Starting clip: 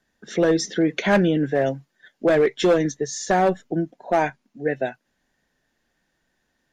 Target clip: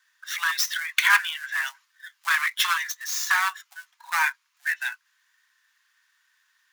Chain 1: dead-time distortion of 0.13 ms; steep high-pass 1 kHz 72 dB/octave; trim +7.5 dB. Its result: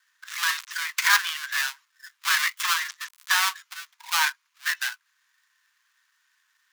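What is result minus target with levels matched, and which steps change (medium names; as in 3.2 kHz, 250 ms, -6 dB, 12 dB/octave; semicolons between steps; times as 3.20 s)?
dead-time distortion: distortion +8 dB
change: dead-time distortion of 0.041 ms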